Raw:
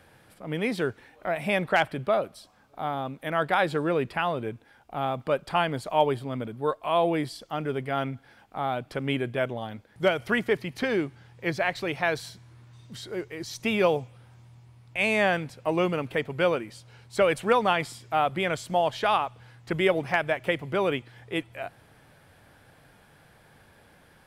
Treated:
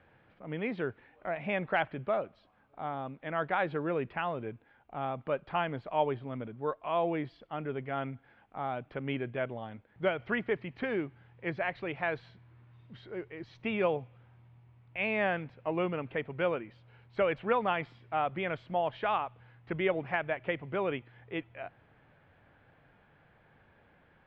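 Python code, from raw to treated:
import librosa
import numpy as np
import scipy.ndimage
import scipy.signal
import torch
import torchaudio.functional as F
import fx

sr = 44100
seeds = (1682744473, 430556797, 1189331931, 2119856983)

y = scipy.signal.sosfilt(scipy.signal.butter(4, 2900.0, 'lowpass', fs=sr, output='sos'), x)
y = F.gain(torch.from_numpy(y), -6.5).numpy()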